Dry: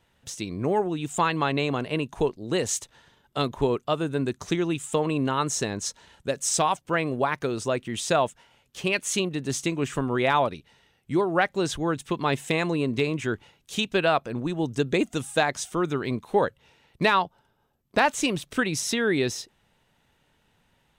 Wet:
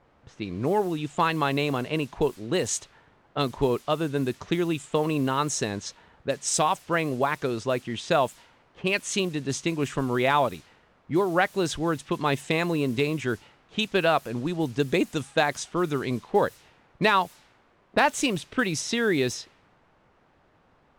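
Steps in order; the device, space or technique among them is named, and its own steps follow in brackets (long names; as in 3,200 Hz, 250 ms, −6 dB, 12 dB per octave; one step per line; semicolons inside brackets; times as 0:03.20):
cassette deck with a dynamic noise filter (white noise bed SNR 24 dB; low-pass that shuts in the quiet parts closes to 980 Hz, open at −21.5 dBFS)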